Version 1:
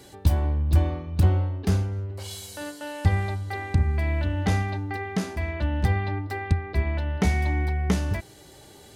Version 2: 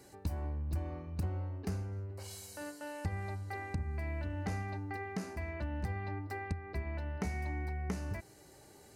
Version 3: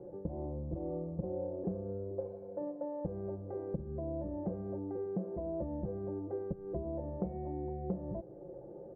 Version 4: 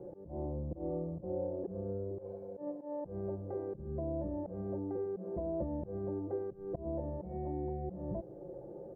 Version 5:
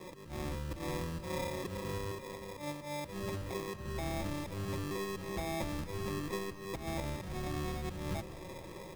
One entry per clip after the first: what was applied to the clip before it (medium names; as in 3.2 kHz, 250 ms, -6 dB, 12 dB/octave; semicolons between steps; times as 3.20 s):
bass shelf 130 Hz -3 dB; compression 2.5:1, threshold -27 dBFS, peak gain reduction 8 dB; peaking EQ 3.4 kHz -13 dB 0.36 oct; trim -8 dB
comb 5.8 ms, depth 95%; compression 2:1, threshold -44 dBFS, peak gain reduction 9 dB; four-pole ladder low-pass 600 Hz, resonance 65%; trim +15 dB
slow attack 114 ms; trim +1.5 dB
octave divider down 1 oct, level -1 dB; sample-and-hold 30×; algorithmic reverb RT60 3.7 s, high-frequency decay 0.9×, pre-delay 115 ms, DRR 12 dB; trim -1.5 dB